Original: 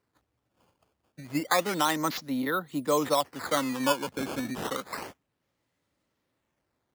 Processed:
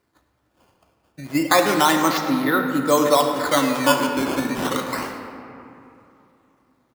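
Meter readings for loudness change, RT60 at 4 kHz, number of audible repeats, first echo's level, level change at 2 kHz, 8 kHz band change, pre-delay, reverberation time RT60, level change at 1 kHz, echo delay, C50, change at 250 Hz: +9.5 dB, 1.5 s, 1, −14.0 dB, +10.0 dB, +8.5 dB, 3 ms, 2.8 s, +9.5 dB, 106 ms, 5.0 dB, +10.0 dB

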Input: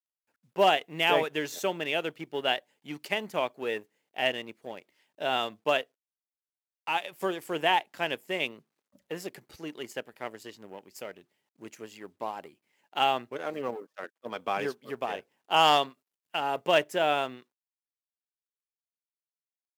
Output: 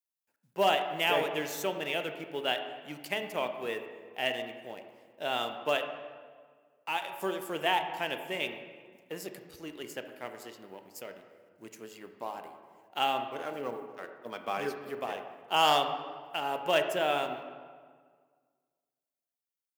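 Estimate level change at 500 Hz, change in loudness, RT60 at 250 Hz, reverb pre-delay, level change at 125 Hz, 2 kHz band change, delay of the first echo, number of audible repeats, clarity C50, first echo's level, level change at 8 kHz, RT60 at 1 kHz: −2.5 dB, −3.0 dB, 1.9 s, 17 ms, −3.0 dB, −3.0 dB, no echo audible, no echo audible, 8.0 dB, no echo audible, 0.0 dB, 1.7 s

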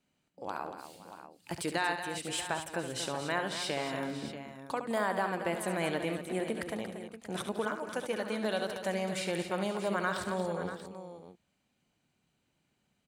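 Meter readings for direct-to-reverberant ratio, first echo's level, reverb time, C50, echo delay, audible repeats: no reverb audible, −9.0 dB, no reverb audible, no reverb audible, 70 ms, 5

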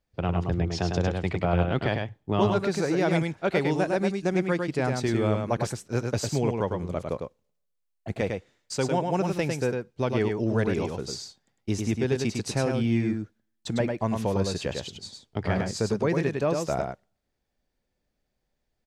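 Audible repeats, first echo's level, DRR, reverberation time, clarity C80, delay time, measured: 1, −4.5 dB, no reverb audible, no reverb audible, no reverb audible, 103 ms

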